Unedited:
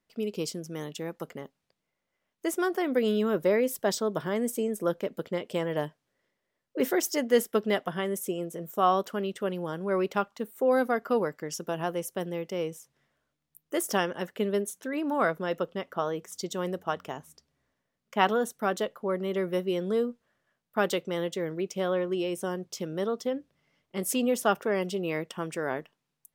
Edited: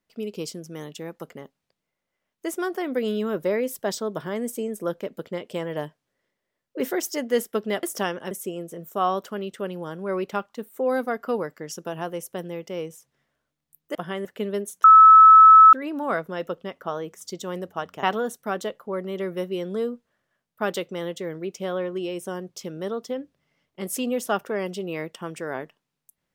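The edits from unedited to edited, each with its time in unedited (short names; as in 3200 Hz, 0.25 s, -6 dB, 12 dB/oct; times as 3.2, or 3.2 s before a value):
7.83–8.13 swap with 13.77–14.25
14.84 add tone 1300 Hz -6.5 dBFS 0.89 s
17.14–18.19 cut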